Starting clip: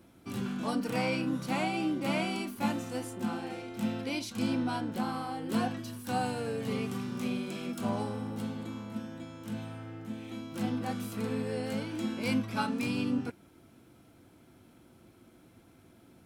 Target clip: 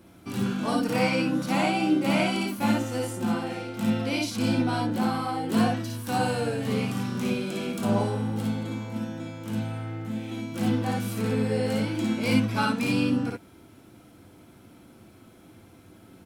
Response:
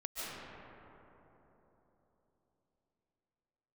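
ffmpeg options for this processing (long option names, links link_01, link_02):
-af "aecho=1:1:55|65:0.668|0.562,volume=4.5dB"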